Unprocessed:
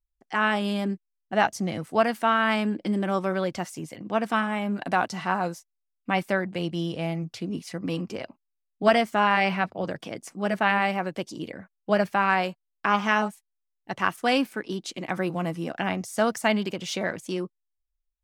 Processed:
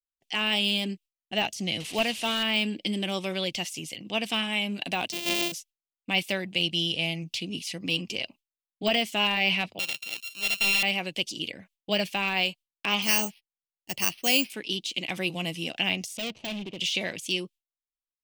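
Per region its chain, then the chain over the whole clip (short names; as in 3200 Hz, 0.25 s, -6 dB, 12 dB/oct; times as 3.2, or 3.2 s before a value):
1.8–2.43 delta modulation 64 kbps, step -34.5 dBFS + high shelf 4800 Hz -8 dB
5.12–5.52 sample sorter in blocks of 128 samples + resonant low shelf 190 Hz -10.5 dB, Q 1.5
9.79–10.83 sample sorter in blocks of 32 samples + HPF 1100 Hz 6 dB/oct + high shelf 2000 Hz +9.5 dB
13.02–14.5 de-esser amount 70% + Chebyshev low-pass 3000 Hz, order 3 + careless resampling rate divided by 6×, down none, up hold
16.17–16.78 median filter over 25 samples + Bessel low-pass 2700 Hz + hard clip -28 dBFS
whole clip: gate with hold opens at -46 dBFS; de-esser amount 95%; resonant high shelf 2000 Hz +12 dB, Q 3; gain -4.5 dB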